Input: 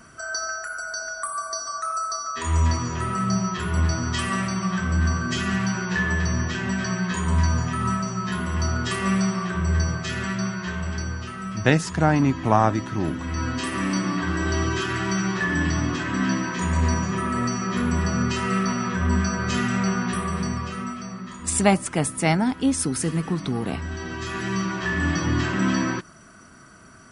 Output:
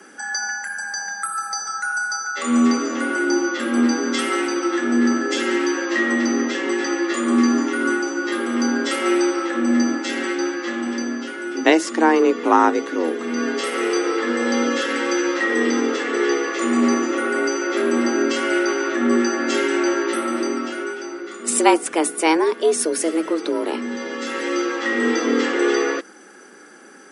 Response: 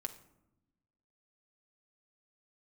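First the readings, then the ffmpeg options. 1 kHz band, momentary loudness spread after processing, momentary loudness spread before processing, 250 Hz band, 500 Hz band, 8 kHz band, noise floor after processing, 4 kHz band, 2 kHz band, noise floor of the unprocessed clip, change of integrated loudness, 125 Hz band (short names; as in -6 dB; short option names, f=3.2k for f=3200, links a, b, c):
+3.5 dB, 8 LU, 8 LU, +5.0 dB, +10.0 dB, +3.5 dB, -37 dBFS, +4.0 dB, +5.0 dB, -40 dBFS, +4.0 dB, under -20 dB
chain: -af "afreqshift=160,volume=3.5dB"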